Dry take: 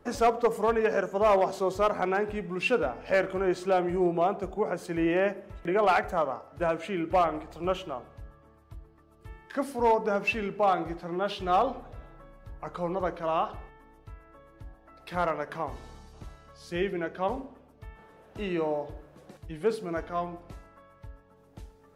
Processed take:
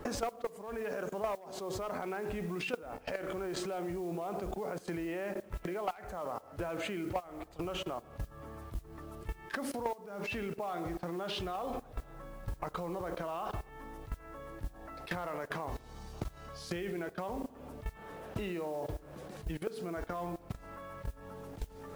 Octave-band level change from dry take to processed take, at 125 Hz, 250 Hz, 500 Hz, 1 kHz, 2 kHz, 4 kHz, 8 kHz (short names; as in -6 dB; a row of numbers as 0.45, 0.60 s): -3.0 dB, -7.5 dB, -11.0 dB, -11.5 dB, -9.0 dB, -3.5 dB, n/a